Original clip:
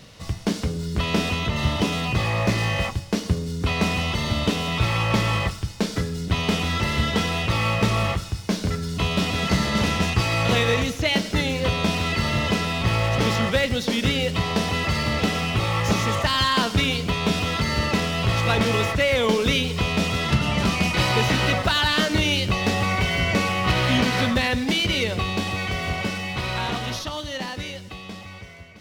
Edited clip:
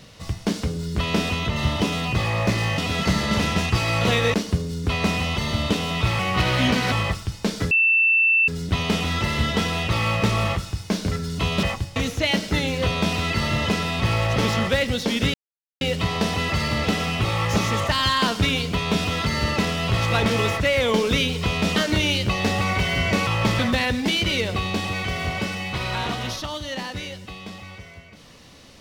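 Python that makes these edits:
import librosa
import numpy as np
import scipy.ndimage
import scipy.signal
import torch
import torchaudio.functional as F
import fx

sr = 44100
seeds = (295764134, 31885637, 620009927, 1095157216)

y = fx.edit(x, sr, fx.swap(start_s=2.78, length_s=0.33, other_s=9.22, other_length_s=1.56),
    fx.swap(start_s=4.96, length_s=0.32, other_s=23.49, other_length_s=0.73),
    fx.insert_tone(at_s=6.07, length_s=0.77, hz=2670.0, db=-14.5),
    fx.insert_silence(at_s=14.16, length_s=0.47),
    fx.cut(start_s=20.11, length_s=1.87), tone=tone)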